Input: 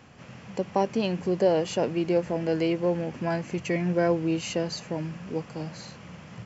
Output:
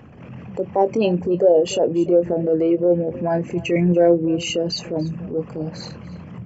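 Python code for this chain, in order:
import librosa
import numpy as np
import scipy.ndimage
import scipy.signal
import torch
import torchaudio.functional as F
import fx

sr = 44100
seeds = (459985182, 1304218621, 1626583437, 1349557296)

y = fx.envelope_sharpen(x, sr, power=2.0)
y = y + 10.0 ** (-20.0 / 20.0) * np.pad(y, (int(291 * sr / 1000.0), 0))[:len(y)]
y = fx.transient(y, sr, attack_db=-6, sustain_db=-2)
y = fx.doubler(y, sr, ms=23.0, db=-11.0)
y = y * librosa.db_to_amplitude(9.0)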